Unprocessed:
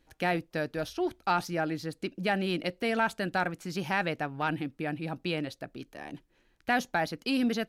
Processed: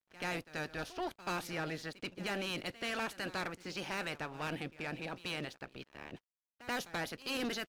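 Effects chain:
ceiling on every frequency bin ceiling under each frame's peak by 16 dB
low-pass that shuts in the quiet parts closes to 2,300 Hz, open at −26.5 dBFS
soft clipping −27 dBFS, distortion −9 dB
echo ahead of the sound 83 ms −15.5 dB
dead-zone distortion −58 dBFS
level −4.5 dB

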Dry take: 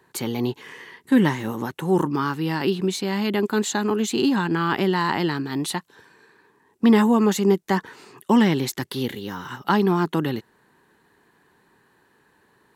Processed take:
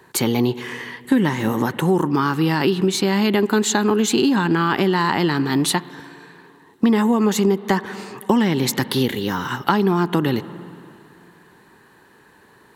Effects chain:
spring reverb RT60 2.5 s, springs 46/57 ms, chirp 30 ms, DRR 19 dB
downward compressor, threshold −23 dBFS, peak gain reduction 11 dB
level +9 dB

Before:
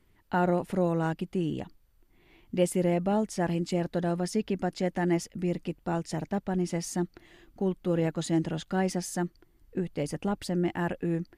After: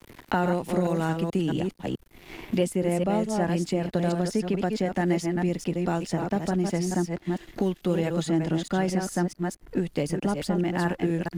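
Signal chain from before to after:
delay that plays each chunk backwards 217 ms, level −5.5 dB
in parallel at +1 dB: downward compressor, threshold −38 dBFS, peak gain reduction 17.5 dB
on the sum: dead-zone distortion −55 dBFS
multiband upward and downward compressor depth 70%

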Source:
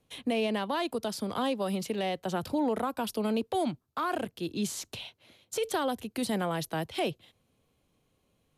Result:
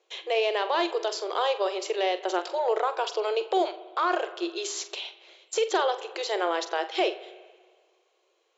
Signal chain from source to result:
flutter between parallel walls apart 7.6 metres, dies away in 0.22 s
brick-wall band-pass 330–7,600 Hz
spring reverb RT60 1.6 s, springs 49/54 ms, chirp 55 ms, DRR 14.5 dB
level +5.5 dB

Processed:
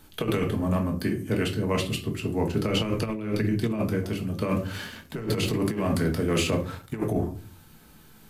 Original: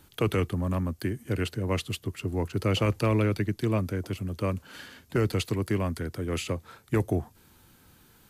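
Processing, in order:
rectangular room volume 290 cubic metres, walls furnished, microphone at 1.5 metres
0:04.42–0:07.00: leveller curve on the samples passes 1
compressor whose output falls as the input rises −24 dBFS, ratio −0.5

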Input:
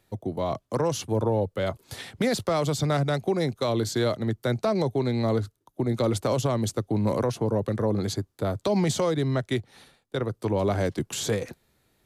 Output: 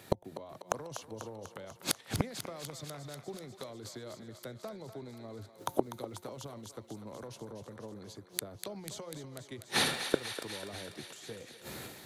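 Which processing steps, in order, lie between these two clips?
high-pass filter 120 Hz
transient designer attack +7 dB, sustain +11 dB
hum removal 178.7 Hz, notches 5
gate with flip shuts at −25 dBFS, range −36 dB
on a send: feedback echo with a high-pass in the loop 246 ms, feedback 74%, high-pass 650 Hz, level −9 dB
on the sum: level +13.5 dB

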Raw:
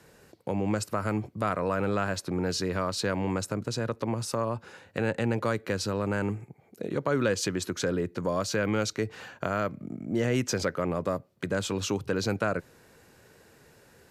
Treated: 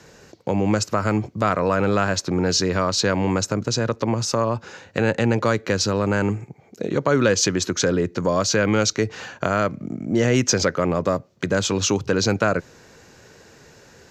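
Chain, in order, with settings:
high shelf with overshoot 7,900 Hz −7.5 dB, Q 3
level +8 dB

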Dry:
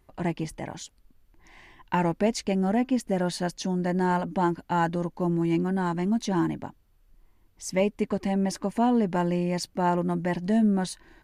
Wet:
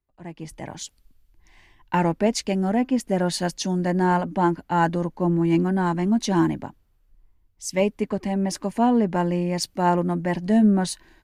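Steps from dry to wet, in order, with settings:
automatic gain control gain up to 13 dB
multiband upward and downward expander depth 40%
level −7 dB

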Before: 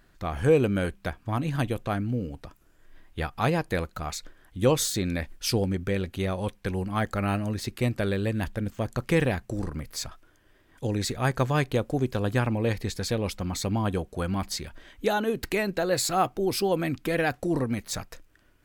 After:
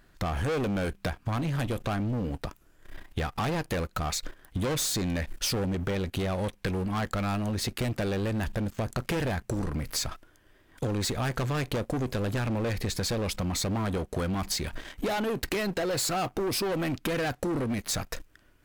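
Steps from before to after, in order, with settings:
leveller curve on the samples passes 2
soft clipping −22 dBFS, distortion −10 dB
downward compressor 10 to 1, threshold −32 dBFS, peak gain reduction 9 dB
level +4.5 dB

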